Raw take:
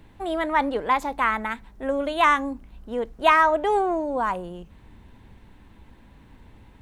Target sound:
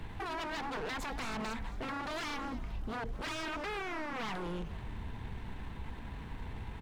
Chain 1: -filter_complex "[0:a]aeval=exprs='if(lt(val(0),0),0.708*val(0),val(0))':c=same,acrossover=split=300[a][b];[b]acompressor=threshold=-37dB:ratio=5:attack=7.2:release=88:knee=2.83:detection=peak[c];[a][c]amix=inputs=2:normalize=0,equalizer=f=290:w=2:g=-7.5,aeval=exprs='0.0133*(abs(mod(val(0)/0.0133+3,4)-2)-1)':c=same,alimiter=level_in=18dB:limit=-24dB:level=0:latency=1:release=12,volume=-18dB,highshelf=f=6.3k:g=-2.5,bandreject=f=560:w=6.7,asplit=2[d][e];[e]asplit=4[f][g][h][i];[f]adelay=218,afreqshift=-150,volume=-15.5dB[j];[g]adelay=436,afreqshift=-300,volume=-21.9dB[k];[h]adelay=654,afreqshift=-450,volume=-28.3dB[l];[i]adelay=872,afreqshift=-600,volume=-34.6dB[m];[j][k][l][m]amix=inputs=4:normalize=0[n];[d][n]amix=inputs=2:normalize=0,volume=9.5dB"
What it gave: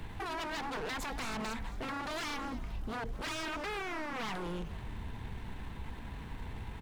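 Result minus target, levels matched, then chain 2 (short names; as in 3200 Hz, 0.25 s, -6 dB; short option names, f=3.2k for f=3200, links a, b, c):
8000 Hz band +3.0 dB
-filter_complex "[0:a]aeval=exprs='if(lt(val(0),0),0.708*val(0),val(0))':c=same,acrossover=split=300[a][b];[b]acompressor=threshold=-37dB:ratio=5:attack=7.2:release=88:knee=2.83:detection=peak[c];[a][c]amix=inputs=2:normalize=0,equalizer=f=290:w=2:g=-7.5,aeval=exprs='0.0133*(abs(mod(val(0)/0.0133+3,4)-2)-1)':c=same,alimiter=level_in=18dB:limit=-24dB:level=0:latency=1:release=12,volume=-18dB,highshelf=f=6.3k:g=-8.5,bandreject=f=560:w=6.7,asplit=2[d][e];[e]asplit=4[f][g][h][i];[f]adelay=218,afreqshift=-150,volume=-15.5dB[j];[g]adelay=436,afreqshift=-300,volume=-21.9dB[k];[h]adelay=654,afreqshift=-450,volume=-28.3dB[l];[i]adelay=872,afreqshift=-600,volume=-34.6dB[m];[j][k][l][m]amix=inputs=4:normalize=0[n];[d][n]amix=inputs=2:normalize=0,volume=9.5dB"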